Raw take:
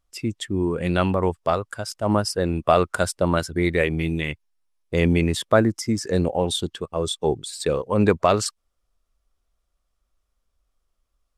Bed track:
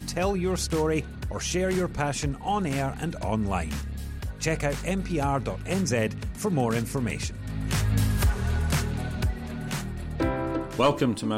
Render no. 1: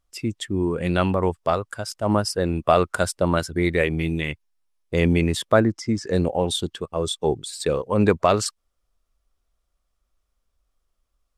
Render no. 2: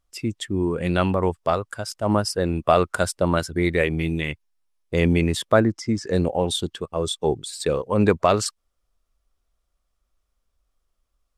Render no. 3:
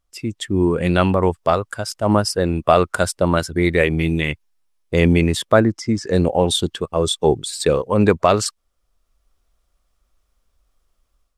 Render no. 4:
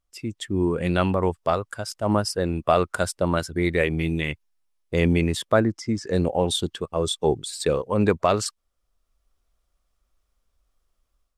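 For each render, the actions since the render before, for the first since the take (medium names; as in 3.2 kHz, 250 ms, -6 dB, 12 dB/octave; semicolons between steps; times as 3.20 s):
5.60–6.11 s: distance through air 77 m
no audible change
level rider gain up to 7.5 dB
trim -5.5 dB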